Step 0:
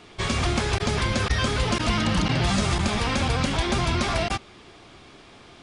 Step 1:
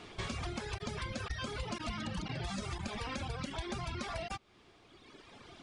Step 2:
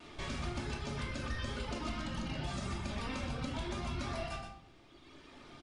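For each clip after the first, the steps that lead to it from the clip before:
reverb reduction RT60 1.8 s; high-shelf EQ 9,100 Hz −4 dB; downward compressor 3 to 1, threshold −38 dBFS, peak gain reduction 13.5 dB; level −2 dB
pitch vibrato 0.57 Hz 15 cents; single-tap delay 124 ms −7.5 dB; rectangular room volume 750 cubic metres, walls furnished, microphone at 2.6 metres; level −4.5 dB

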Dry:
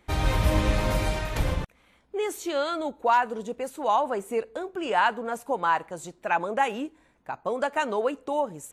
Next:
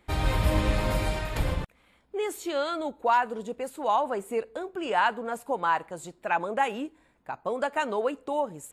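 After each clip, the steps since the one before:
notch filter 6,000 Hz, Q 7.4
level −1.5 dB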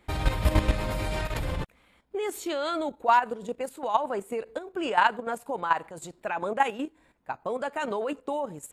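output level in coarse steps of 11 dB
level +4 dB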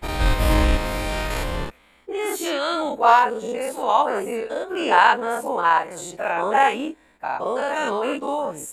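every bin's largest magnitude spread in time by 120 ms
parametric band 110 Hz −8 dB 1.4 octaves
level +2 dB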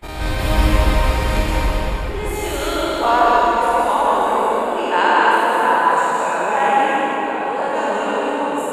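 convolution reverb RT60 4.7 s, pre-delay 109 ms, DRR −6 dB
level −3 dB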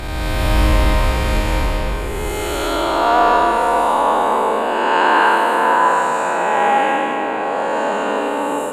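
peak hold with a rise ahead of every peak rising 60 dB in 2.00 s
level −2.5 dB

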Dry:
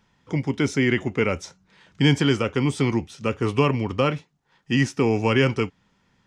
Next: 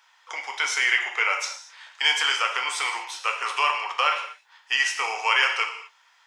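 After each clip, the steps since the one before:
in parallel at −0.5 dB: downward compressor, threshold −27 dBFS, peak gain reduction 13.5 dB
on the sum: inverse Chebyshev high-pass filter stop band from 190 Hz, stop band 70 dB
reverb whose tail is shaped and stops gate 270 ms falling, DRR 2.5 dB
level +2 dB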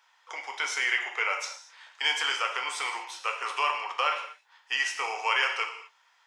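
parametric band 360 Hz +4.5 dB 2.8 octaves
level −6 dB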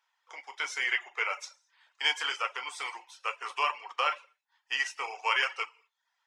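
reverb reduction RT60 0.56 s
expander for the loud parts 1.5 to 1, over −48 dBFS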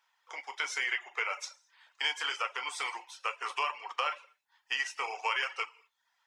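downward compressor 2.5 to 1, threshold −34 dBFS, peak gain reduction 8.5 dB
level +3 dB

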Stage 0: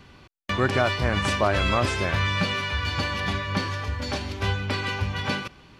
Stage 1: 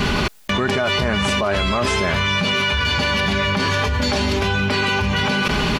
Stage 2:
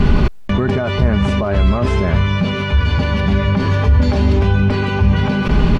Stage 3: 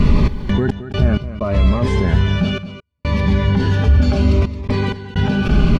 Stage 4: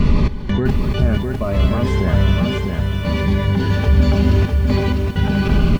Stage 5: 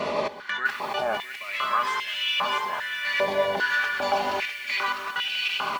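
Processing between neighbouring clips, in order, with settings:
in parallel at +1 dB: brickwall limiter −20 dBFS, peak gain reduction 10.5 dB; on the sum: comb filter 4.8 ms, depth 51%; envelope flattener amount 100%; level −5 dB
spectral tilt −3.5 dB per octave; level −2 dB
gate pattern "xxx.x.xxxxx..xxx" 64 BPM −60 dB; single-tap delay 220 ms −13 dB; phaser whose notches keep moving one way falling 0.67 Hz
feedback echo at a low word length 653 ms, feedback 35%, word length 7 bits, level −4 dB; level −1.5 dB
high-pass on a step sequencer 2.5 Hz 640–2,700 Hz; level −2 dB

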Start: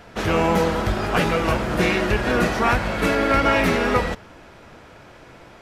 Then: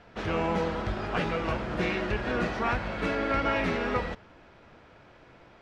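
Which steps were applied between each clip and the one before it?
low-pass filter 4,600 Hz 12 dB per octave
level −9 dB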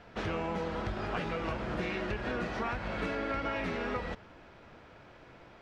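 downward compressor, threshold −31 dBFS, peak gain reduction 8.5 dB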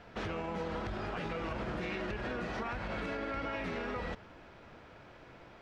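brickwall limiter −29 dBFS, peak gain reduction 7 dB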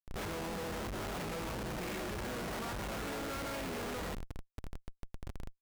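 comparator with hysteresis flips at −45 dBFS

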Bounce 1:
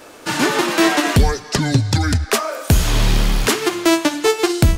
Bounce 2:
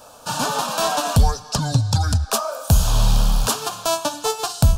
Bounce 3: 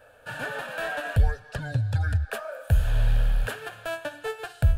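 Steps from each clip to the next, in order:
phaser with its sweep stopped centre 840 Hz, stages 4
drawn EQ curve 110 Hz 0 dB, 200 Hz −13 dB, 530 Hz 0 dB, 1,100 Hz −16 dB, 1,700 Hz +10 dB, 5,700 Hz −24 dB, 9,700 Hz −14 dB; level −5 dB

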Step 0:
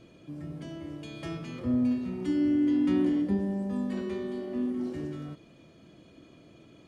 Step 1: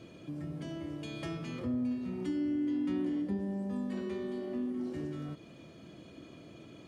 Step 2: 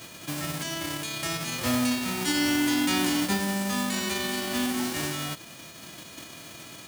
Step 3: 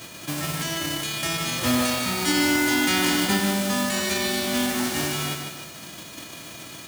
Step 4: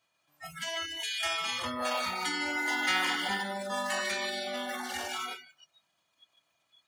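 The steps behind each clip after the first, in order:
high-pass filter 56 Hz; downward compressor 2 to 1, threshold −42 dBFS, peak gain reduction 11 dB; level +3 dB
spectral envelope flattened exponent 0.3; level +7.5 dB
feedback echo at a low word length 151 ms, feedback 55%, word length 8 bits, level −5 dB; level +3.5 dB
spectral envelope exaggerated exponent 2; low shelf with overshoot 540 Hz −13.5 dB, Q 1.5; noise reduction from a noise print of the clip's start 30 dB; level −3 dB

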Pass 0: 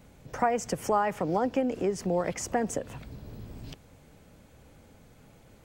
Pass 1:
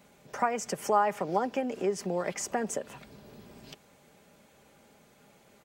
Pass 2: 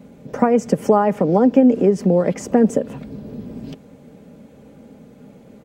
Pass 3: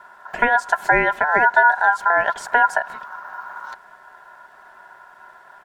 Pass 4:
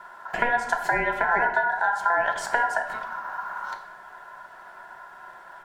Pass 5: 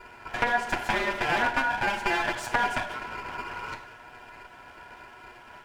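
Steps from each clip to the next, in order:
high-pass filter 380 Hz 6 dB per octave; comb filter 5 ms, depth 39%
bass and treble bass +13 dB, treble −3 dB; hollow resonant body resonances 270/470 Hz, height 14 dB, ringing for 25 ms; level +2.5 dB
ring modulation 1,200 Hz; level +1 dB
downward compressor 6 to 1, threshold −20 dBFS, peak gain reduction 11 dB; rectangular room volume 360 cubic metres, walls mixed, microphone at 0.75 metres
lower of the sound and its delayed copy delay 8.3 ms; highs frequency-modulated by the lows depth 0.2 ms; level −1.5 dB

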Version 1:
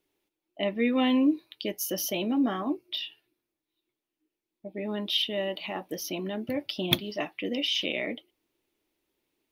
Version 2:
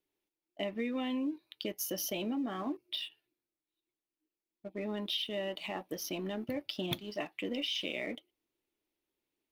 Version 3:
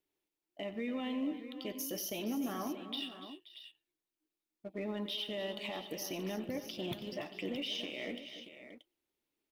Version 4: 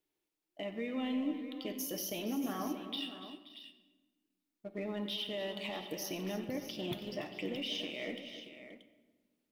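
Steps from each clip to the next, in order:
leveller curve on the samples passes 1; downward compressor 6 to 1, threshold −25 dBFS, peak gain reduction 10.5 dB; level −7 dB
brickwall limiter −29 dBFS, peak gain reduction 9 dB; multi-tap delay 92/144/286/303/528/631 ms −14.5/−20/−14.5/−18.5/−17/−12 dB; level −1 dB
rectangular room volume 930 cubic metres, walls mixed, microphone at 0.55 metres

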